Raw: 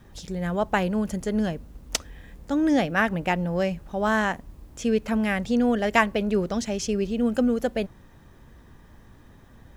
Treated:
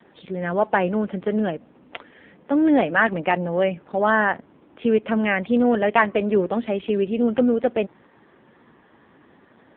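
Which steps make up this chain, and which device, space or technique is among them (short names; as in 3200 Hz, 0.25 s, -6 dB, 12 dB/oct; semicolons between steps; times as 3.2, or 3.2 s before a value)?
telephone (BPF 260–3500 Hz; soft clip -11.5 dBFS, distortion -18 dB; gain +7 dB; AMR-NB 5.9 kbps 8000 Hz)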